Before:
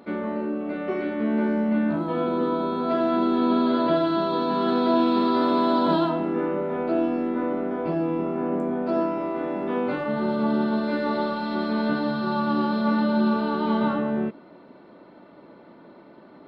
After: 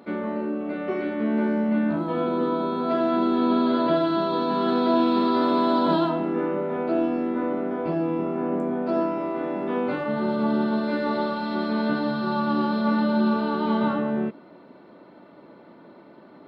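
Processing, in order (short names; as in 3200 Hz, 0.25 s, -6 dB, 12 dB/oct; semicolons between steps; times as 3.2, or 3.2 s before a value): HPF 59 Hz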